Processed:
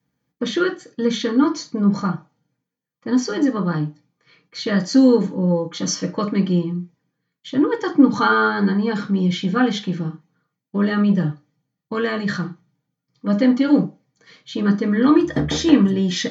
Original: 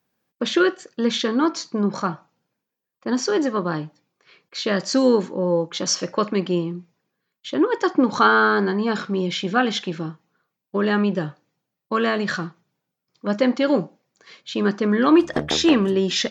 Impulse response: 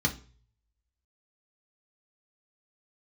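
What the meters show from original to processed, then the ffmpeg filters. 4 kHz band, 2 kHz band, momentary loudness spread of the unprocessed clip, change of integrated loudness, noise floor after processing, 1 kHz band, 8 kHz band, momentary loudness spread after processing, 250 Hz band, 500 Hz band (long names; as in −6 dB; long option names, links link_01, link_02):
−2.5 dB, −2.0 dB, 13 LU, +2.0 dB, −82 dBFS, −1.5 dB, can't be measured, 13 LU, +4.0 dB, −1.5 dB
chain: -filter_complex "[1:a]atrim=start_sample=2205,atrim=end_sample=3969[link_01];[0:a][link_01]afir=irnorm=-1:irlink=0,volume=-10.5dB"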